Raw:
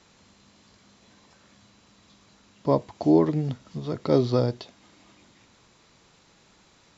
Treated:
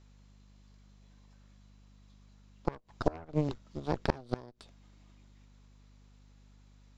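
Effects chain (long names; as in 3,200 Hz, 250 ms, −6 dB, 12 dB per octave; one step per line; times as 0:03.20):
harmonic generator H 3 −8 dB, 5 −23 dB, 6 −14 dB, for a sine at −6 dBFS
mains hum 50 Hz, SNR 29 dB
gate with flip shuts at −15 dBFS, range −27 dB
level +3 dB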